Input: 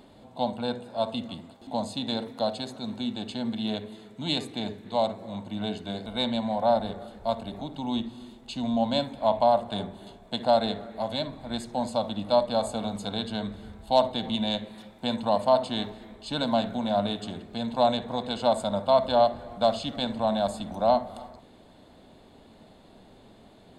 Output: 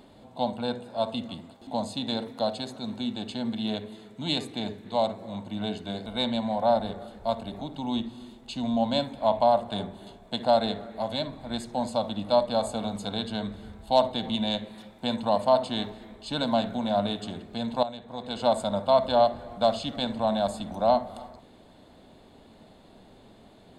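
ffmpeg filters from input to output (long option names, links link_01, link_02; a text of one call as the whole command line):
ffmpeg -i in.wav -filter_complex "[0:a]asplit=2[link_01][link_02];[link_01]atrim=end=17.83,asetpts=PTS-STARTPTS,afade=type=out:start_time=17.826:duration=0.004:curve=hsin:silence=0.211349[link_03];[link_02]atrim=start=17.83,asetpts=PTS-STARTPTS,afade=type=in:duration=0.6:curve=qua:silence=0.211349[link_04];[link_03][link_04]concat=n=2:v=0:a=1" out.wav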